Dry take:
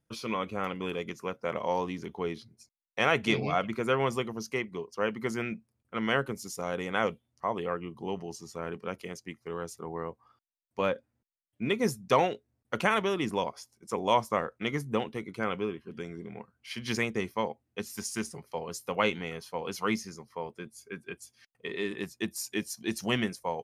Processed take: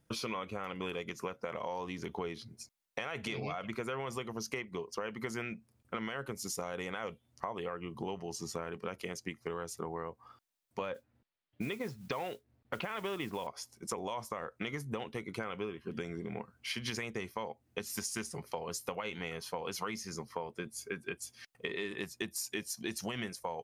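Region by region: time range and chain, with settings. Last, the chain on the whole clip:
10.94–13.47 s: low-pass 4.2 kHz 24 dB/octave + modulation noise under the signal 24 dB
whole clip: dynamic bell 240 Hz, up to -5 dB, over -41 dBFS, Q 0.8; peak limiter -22.5 dBFS; compression 6:1, threshold -43 dBFS; trim +7.5 dB

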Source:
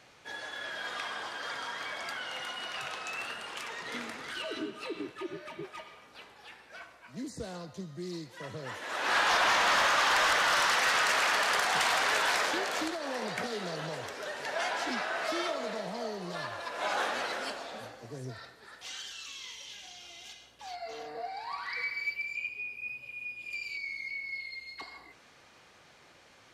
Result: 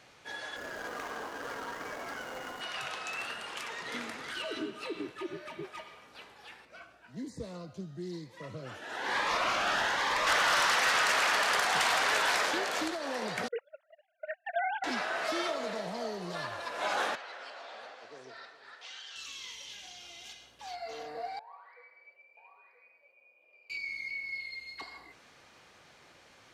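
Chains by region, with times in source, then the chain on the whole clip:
0.56–2.61 s: median filter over 15 samples + small resonant body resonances 280/430/2900 Hz, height 7 dB, ringing for 25 ms
6.65–10.27 s: treble shelf 3.8 kHz -8.5 dB + Shepard-style phaser rising 1.1 Hz
13.48–14.84 s: formants replaced by sine waves + gate -36 dBFS, range -32 dB
17.15–19.16 s: band-pass 560–4500 Hz + echo whose repeats swap between lows and highs 136 ms, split 1.4 kHz, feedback 76%, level -13.5 dB + compression 5:1, threshold -42 dBFS
21.39–23.70 s: ladder band-pass 640 Hz, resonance 60% + delay 979 ms -9 dB
whole clip: none

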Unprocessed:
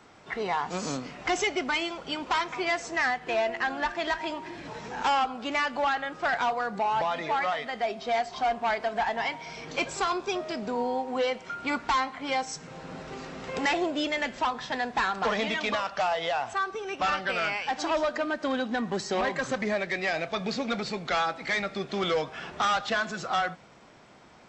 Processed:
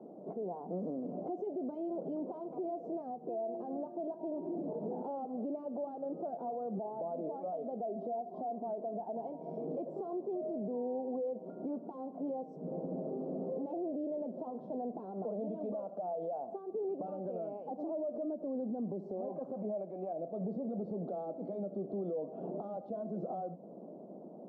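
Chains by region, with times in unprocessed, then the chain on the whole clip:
19.28–20.13 s: high-order bell 1.4 kHz +10 dB 2.4 oct + transient shaper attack -10 dB, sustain -2 dB
whole clip: compression 6:1, threshold -37 dBFS; elliptic band-pass 180–640 Hz, stop band 50 dB; peak limiter -40 dBFS; trim +9 dB

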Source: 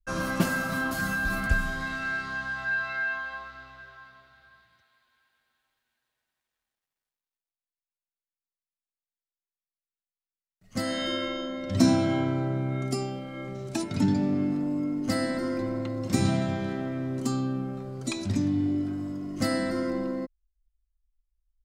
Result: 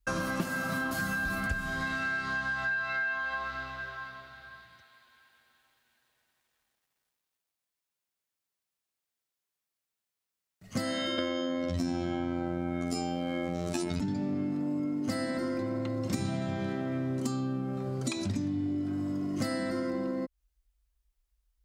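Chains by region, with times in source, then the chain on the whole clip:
11.18–14.00 s: robot voice 87 Hz + level flattener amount 70%
whole clip: high-pass 48 Hz; compression 6:1, threshold -38 dBFS; trim +8 dB

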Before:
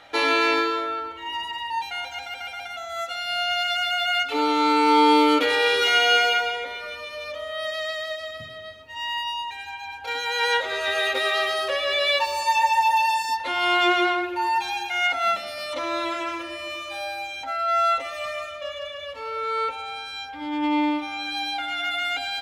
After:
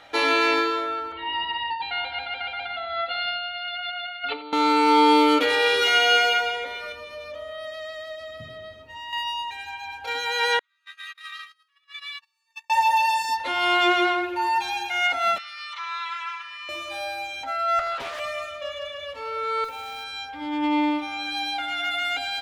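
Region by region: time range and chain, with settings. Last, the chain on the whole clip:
1.12–4.53 s: compressor with a negative ratio -28 dBFS, ratio -0.5 + steep low-pass 4.6 kHz 96 dB/octave + delay 87 ms -15.5 dB
6.92–9.13 s: compression 2:1, threshold -36 dBFS + tilt shelf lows +4 dB
10.59–12.70 s: elliptic high-pass 1.1 kHz + gate -24 dBFS, range -42 dB + compression, threshold -33 dBFS
15.38–16.69 s: steep high-pass 1 kHz 48 dB/octave + distance through air 120 m
17.79–18.20 s: compression, threshold -25 dBFS + loudspeaker Doppler distortion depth 0.49 ms
19.64–20.04 s: compression 3:1, threshold -30 dBFS + short-mantissa float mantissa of 2-bit + hard clipper -29.5 dBFS
whole clip: none

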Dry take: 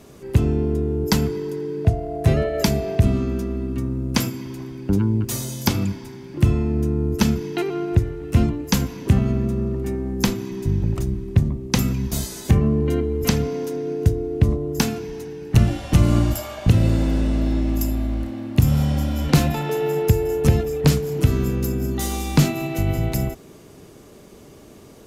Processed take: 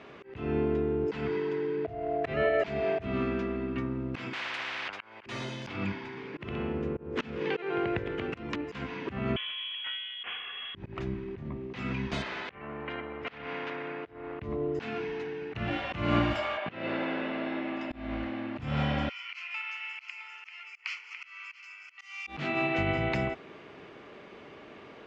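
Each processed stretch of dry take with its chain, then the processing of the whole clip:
4.33–5.26 s: compressor with a negative ratio -28 dBFS + spectrum-flattening compressor 10:1
6.07–8.75 s: compression 2.5:1, threshold -24 dBFS + ever faster or slower copies 99 ms, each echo +2 st, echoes 2, each echo -6 dB
9.36–10.75 s: high-pass 490 Hz 24 dB/octave + frequency inversion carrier 3.7 kHz + decay stretcher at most 100 dB/s
12.22–14.40 s: compression, threshold -25 dBFS + tape spacing loss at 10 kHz 36 dB + spectrum-flattening compressor 2:1
16.57–17.91 s: Chebyshev band-pass 160–5300 Hz + tone controls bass -12 dB, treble -10 dB
19.09–22.27 s: Chebyshev high-pass 1.7 kHz, order 3 + static phaser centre 2.5 kHz, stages 8 + delay 662 ms -9 dB
whole clip: low-pass 2.5 kHz 24 dB/octave; tilt EQ +4.5 dB/octave; slow attack 215 ms; trim +2.5 dB

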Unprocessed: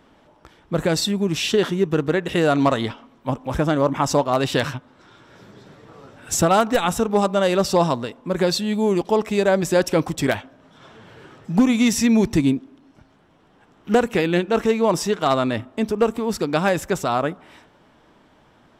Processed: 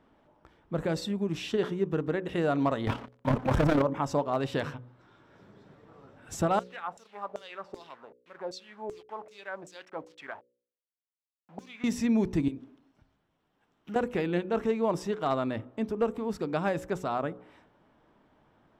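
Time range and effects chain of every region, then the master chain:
2.87–3.82 s: waveshaping leveller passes 5 + AM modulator 34 Hz, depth 45%
6.59–11.84 s: send-on-delta sampling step -31 dBFS + LFO band-pass saw down 2.6 Hz 510–7400 Hz
12.48–13.96 s: compression 8:1, threshold -31 dBFS + treble shelf 2 kHz +8 dB + three bands expanded up and down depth 70%
whole clip: treble shelf 3 kHz -11.5 dB; de-hum 61.44 Hz, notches 9; trim -8.5 dB

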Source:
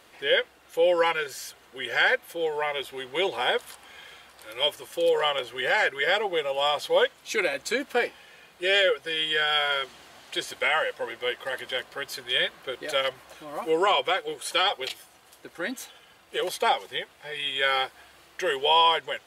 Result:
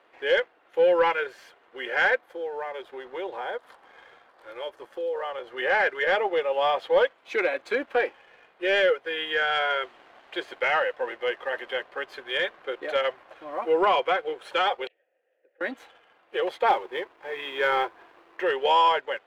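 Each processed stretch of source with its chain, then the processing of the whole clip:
2.19–5.57 s: peaking EQ 2.6 kHz -7 dB 0.71 oct + compression 2:1, threshold -37 dBFS
14.87–15.61 s: vowel filter e + distance through air 310 m + compression 5:1, threshold -54 dBFS
16.68–18.42 s: treble shelf 3.1 kHz -5.5 dB + companded quantiser 4-bit + small resonant body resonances 350/1000 Hz, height 8 dB, ringing for 25 ms
whole clip: three-band isolator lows -22 dB, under 280 Hz, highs -16 dB, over 3.4 kHz; waveshaping leveller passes 1; treble shelf 3.2 kHz -11 dB

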